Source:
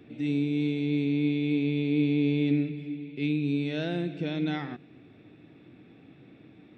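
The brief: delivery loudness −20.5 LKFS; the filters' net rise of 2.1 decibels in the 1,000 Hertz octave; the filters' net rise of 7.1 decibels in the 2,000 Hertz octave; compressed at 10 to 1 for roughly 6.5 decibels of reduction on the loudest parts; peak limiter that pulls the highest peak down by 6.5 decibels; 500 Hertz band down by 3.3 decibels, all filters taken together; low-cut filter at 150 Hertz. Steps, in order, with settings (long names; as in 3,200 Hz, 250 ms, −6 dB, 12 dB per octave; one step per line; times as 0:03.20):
high-pass filter 150 Hz
parametric band 500 Hz −5 dB
parametric band 1,000 Hz +3.5 dB
parametric band 2,000 Hz +8.5 dB
downward compressor 10 to 1, threshold −29 dBFS
level +16.5 dB
brickwall limiter −12 dBFS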